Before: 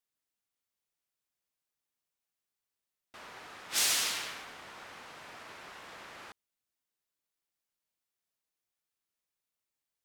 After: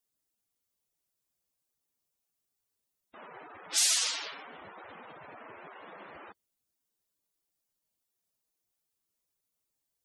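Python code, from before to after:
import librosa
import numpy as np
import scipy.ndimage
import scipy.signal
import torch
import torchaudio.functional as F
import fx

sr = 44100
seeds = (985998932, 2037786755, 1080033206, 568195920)

y = fx.spec_gate(x, sr, threshold_db=-10, keep='strong')
y = fx.peak_eq(y, sr, hz=1900.0, db=-8.5, octaves=2.5)
y = y * 10.0 ** (7.5 / 20.0)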